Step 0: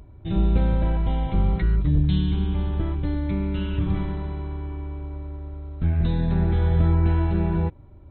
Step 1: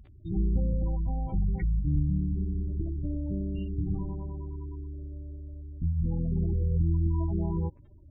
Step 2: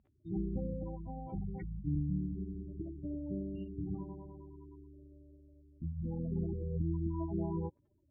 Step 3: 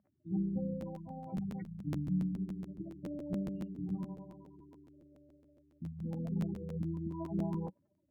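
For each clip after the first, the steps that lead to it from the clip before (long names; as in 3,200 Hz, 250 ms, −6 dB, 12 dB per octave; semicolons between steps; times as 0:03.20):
surface crackle 45 per second −28 dBFS; gate on every frequency bin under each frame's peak −20 dB strong; level −6.5 dB
resonant band-pass 520 Hz, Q 0.5; expander for the loud parts 1.5 to 1, over −54 dBFS
loudspeaker in its box 140–2,200 Hz, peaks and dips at 190 Hz +8 dB, 400 Hz −6 dB, 610 Hz +7 dB; regular buffer underruns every 0.14 s, samples 512, repeat, from 0:00.80; level −1.5 dB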